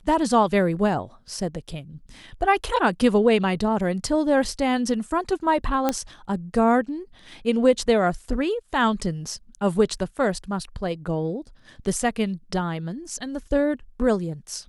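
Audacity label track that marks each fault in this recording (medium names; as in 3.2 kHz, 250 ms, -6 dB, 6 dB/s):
5.890000	5.890000	pop -8 dBFS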